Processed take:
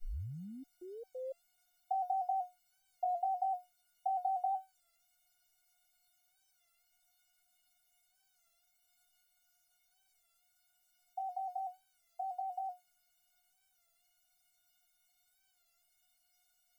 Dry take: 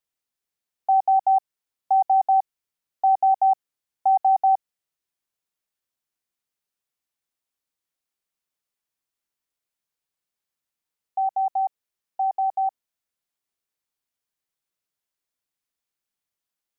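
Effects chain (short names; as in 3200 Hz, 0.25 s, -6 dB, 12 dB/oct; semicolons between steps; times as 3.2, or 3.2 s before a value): tape start at the beginning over 1.78 s; bell 540 Hz +4.5 dB 0.54 oct; requantised 10-bit, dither triangular; resonator 720 Hz, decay 0.21 s, harmonics all, mix 100%; record warp 33 1/3 rpm, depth 100 cents; gain +1 dB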